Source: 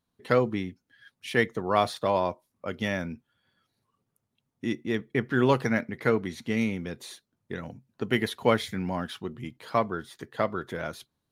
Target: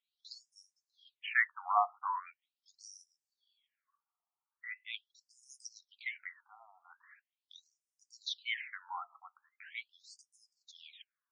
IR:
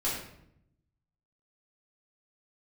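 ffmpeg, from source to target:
-af "asubboost=boost=11:cutoff=240,afftfilt=real='re*between(b*sr/1024,940*pow(7200/940,0.5+0.5*sin(2*PI*0.41*pts/sr))/1.41,940*pow(7200/940,0.5+0.5*sin(2*PI*0.41*pts/sr))*1.41)':imag='im*between(b*sr/1024,940*pow(7200/940,0.5+0.5*sin(2*PI*0.41*pts/sr))/1.41,940*pow(7200/940,0.5+0.5*sin(2*PI*0.41*pts/sr))*1.41)':win_size=1024:overlap=0.75"

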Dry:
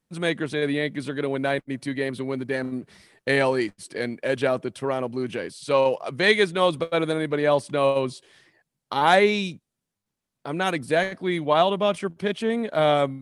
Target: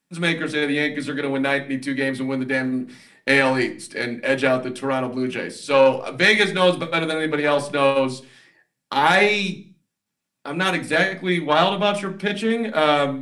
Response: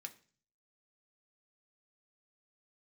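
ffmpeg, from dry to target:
-filter_complex "[0:a]aeval=exprs='0.596*(cos(1*acos(clip(val(0)/0.596,-1,1)))-cos(1*PI/2))+0.0596*(cos(3*acos(clip(val(0)/0.596,-1,1)))-cos(3*PI/2))+0.0211*(cos(6*acos(clip(val(0)/0.596,-1,1)))-cos(6*PI/2))':channel_layout=same[link_01];[1:a]atrim=start_sample=2205,afade=type=out:start_time=0.36:duration=0.01,atrim=end_sample=16317[link_02];[link_01][link_02]afir=irnorm=-1:irlink=0,alimiter=level_in=15dB:limit=-1dB:release=50:level=0:latency=1,volume=-2.5dB"

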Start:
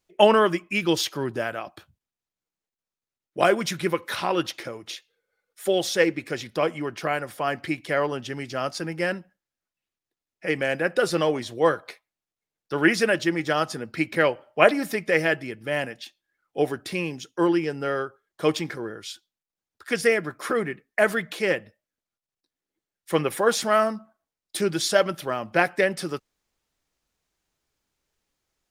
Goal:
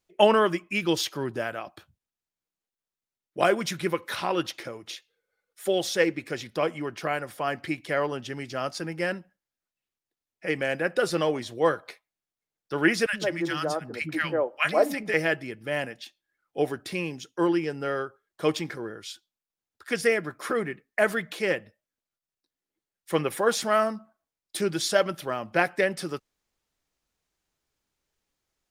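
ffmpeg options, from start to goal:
ffmpeg -i in.wav -filter_complex "[0:a]asettb=1/sr,asplit=3[link_01][link_02][link_03];[link_01]atrim=end=13.064[link_04];[link_02]atrim=start=13.06:end=15.14,asetpts=PTS-STARTPTS,afade=type=in:duration=0.004:curve=qsin,afade=type=out:start_time=2.076:duration=0.004:curve=qsin,acrossover=split=250|1100[link_05][link_06][link_07];[link_05]adelay=70[link_08];[link_06]adelay=150[link_09];[link_08][link_09][link_07]amix=inputs=3:normalize=0,atrim=end_sample=91728[link_10];[link_03]atrim=start=15.136[link_11];[link_04][link_10]acrossfade=duration=0.004:curve1=hsin:curve2=qsin[link_12];[link_12][link_11]acrossfade=duration=0.004:curve1=qsin:curve2=hsin,volume=-2.5dB" out.wav

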